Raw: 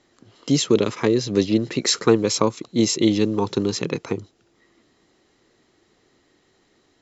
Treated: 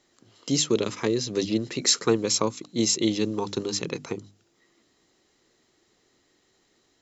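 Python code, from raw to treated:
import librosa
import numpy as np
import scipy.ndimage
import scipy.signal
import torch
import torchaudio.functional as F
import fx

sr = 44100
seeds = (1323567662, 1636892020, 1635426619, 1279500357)

y = fx.high_shelf(x, sr, hz=4800.0, db=10.0)
y = fx.hum_notches(y, sr, base_hz=50, count=6)
y = y * librosa.db_to_amplitude(-6.0)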